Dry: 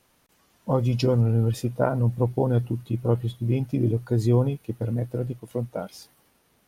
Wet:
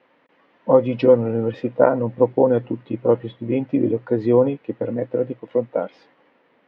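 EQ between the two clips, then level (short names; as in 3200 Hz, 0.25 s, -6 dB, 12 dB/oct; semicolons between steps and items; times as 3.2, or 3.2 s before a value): speaker cabinet 230–3000 Hz, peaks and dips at 280 Hz +6 dB, 520 Hz +9 dB, 950 Hz +4 dB, 1900 Hz +6 dB; +4.0 dB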